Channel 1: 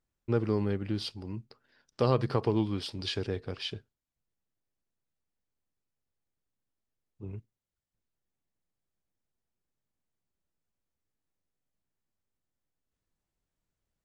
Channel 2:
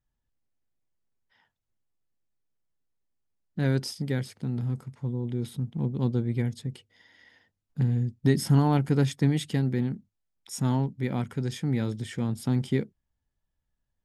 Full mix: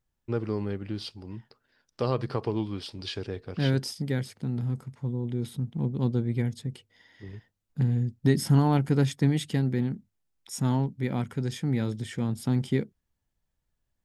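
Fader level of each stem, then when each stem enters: -1.5, 0.0 dB; 0.00, 0.00 s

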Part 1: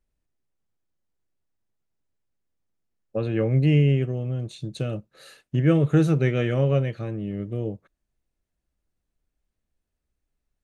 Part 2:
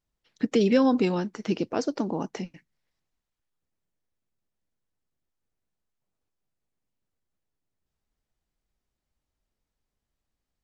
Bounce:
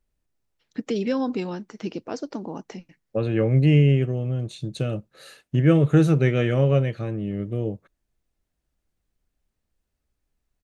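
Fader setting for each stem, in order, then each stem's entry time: +2.0, -4.0 dB; 0.00, 0.35 s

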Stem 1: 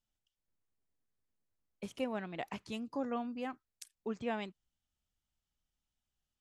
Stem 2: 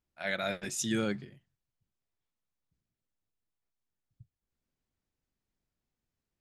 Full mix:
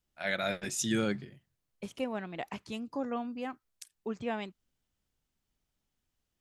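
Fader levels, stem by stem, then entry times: +2.0, +1.0 dB; 0.00, 0.00 s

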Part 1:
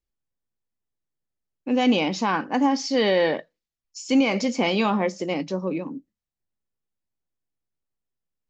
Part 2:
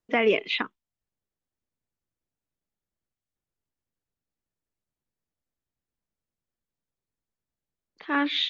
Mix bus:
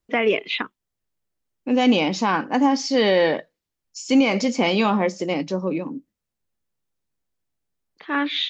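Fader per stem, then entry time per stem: +2.5, +2.0 dB; 0.00, 0.00 s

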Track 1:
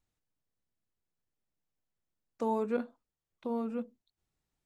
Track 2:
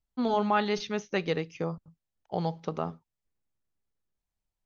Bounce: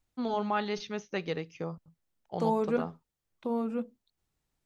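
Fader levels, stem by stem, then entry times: +3.0, -4.5 dB; 0.00, 0.00 s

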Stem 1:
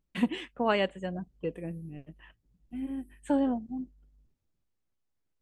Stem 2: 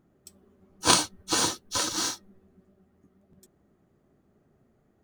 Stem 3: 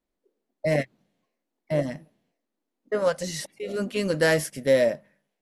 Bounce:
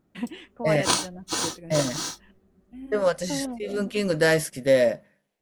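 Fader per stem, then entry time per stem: -4.5, -2.5, +1.0 dB; 0.00, 0.00, 0.00 s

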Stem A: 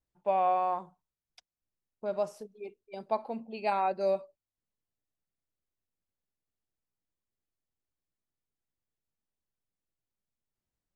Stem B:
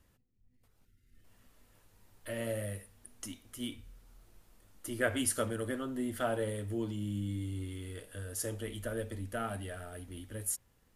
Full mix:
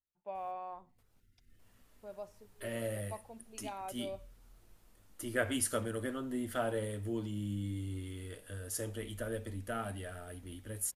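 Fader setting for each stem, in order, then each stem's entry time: -14.5, -1.5 dB; 0.00, 0.35 s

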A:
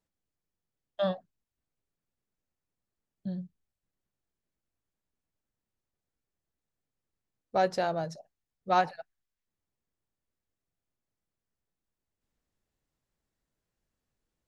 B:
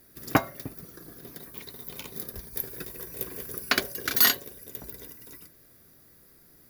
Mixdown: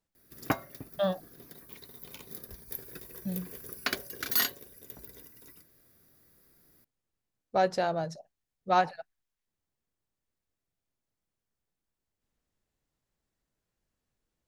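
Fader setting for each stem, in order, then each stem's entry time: +0.5, -7.0 dB; 0.00, 0.15 s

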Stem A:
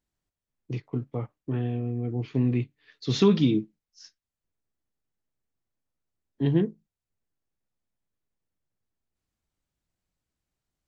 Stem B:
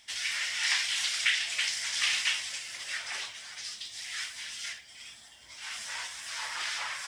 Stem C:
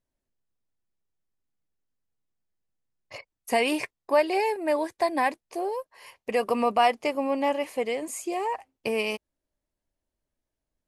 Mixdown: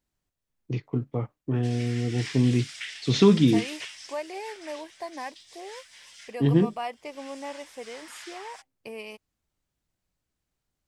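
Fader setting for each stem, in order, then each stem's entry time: +2.5, -10.5, -12.0 dB; 0.00, 1.55, 0.00 s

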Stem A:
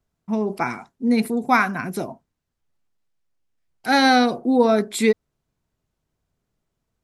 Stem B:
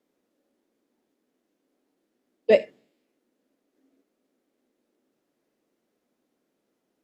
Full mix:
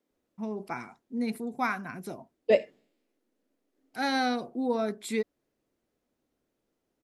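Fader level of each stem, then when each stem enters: -12.0, -4.5 dB; 0.10, 0.00 s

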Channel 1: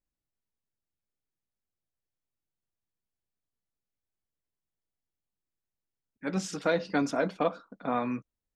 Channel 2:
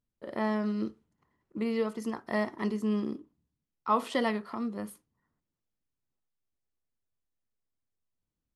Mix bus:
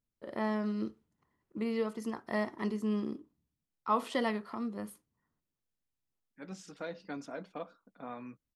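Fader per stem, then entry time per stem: -14.0, -3.0 dB; 0.15, 0.00 s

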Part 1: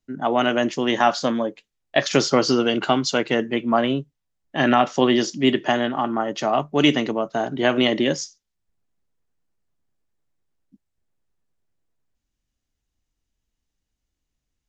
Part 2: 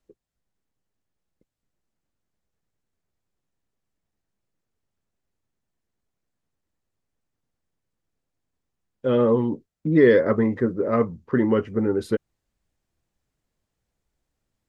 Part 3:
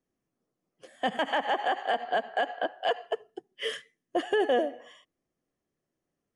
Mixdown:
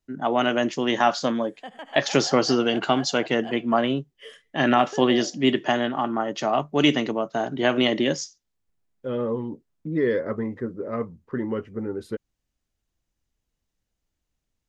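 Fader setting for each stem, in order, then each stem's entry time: -2.0, -7.5, -11.0 dB; 0.00, 0.00, 0.60 s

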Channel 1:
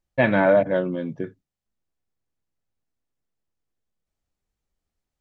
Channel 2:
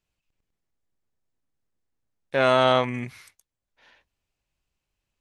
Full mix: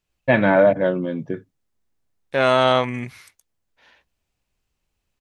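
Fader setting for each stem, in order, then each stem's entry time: +2.5, +2.5 dB; 0.10, 0.00 s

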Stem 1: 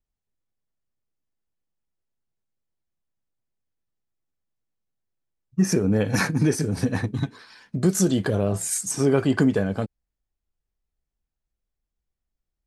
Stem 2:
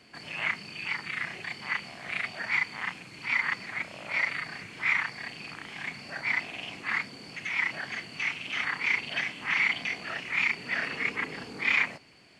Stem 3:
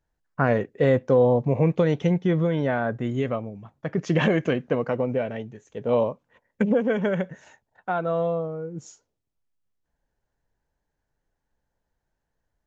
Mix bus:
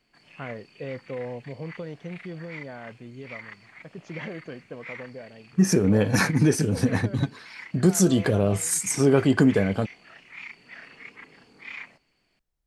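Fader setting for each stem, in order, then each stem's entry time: +1.0, -14.0, -15.5 dB; 0.00, 0.00, 0.00 s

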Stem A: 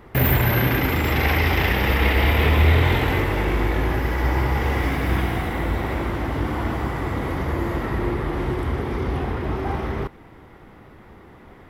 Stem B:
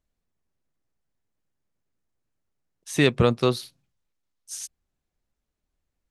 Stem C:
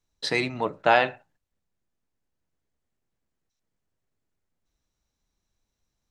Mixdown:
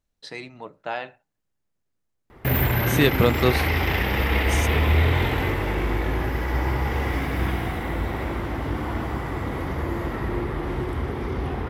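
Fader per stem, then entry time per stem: -3.0, +0.5, -11.0 dB; 2.30, 0.00, 0.00 s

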